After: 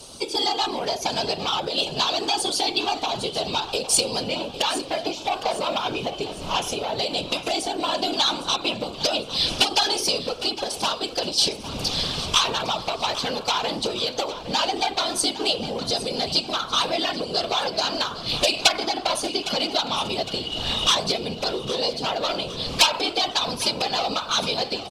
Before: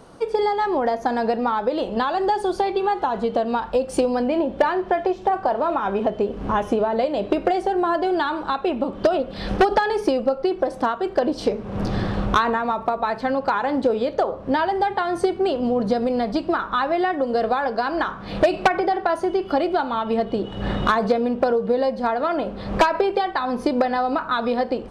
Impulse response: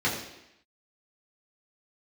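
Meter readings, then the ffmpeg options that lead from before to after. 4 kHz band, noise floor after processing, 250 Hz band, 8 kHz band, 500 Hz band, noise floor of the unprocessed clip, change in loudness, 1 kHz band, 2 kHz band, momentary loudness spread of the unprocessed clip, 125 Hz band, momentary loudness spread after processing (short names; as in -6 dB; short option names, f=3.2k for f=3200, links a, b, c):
+15.0 dB, -36 dBFS, -8.5 dB, n/a, -7.0 dB, -36 dBFS, -1.0 dB, -5.0 dB, -1.5 dB, 4 LU, -3.5 dB, 6 LU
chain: -filter_complex "[0:a]highshelf=f=3.2k:g=-8.5,acrossover=split=640[a][b];[a]acompressor=threshold=-30dB:ratio=6[c];[c][b]amix=inputs=2:normalize=0,asoftclip=type=tanh:threshold=-17dB,aexciter=amount=14.9:drive=5.4:freq=2.8k,afftfilt=real='hypot(re,im)*cos(2*PI*random(0))':imag='hypot(re,im)*sin(2*PI*random(1))':win_size=512:overlap=0.75,afreqshift=-27,asplit=2[d][e];[e]aecho=0:1:809|1618|2427|3236|4045:0.2|0.0958|0.046|0.0221|0.0106[f];[d][f]amix=inputs=2:normalize=0,volume=5dB"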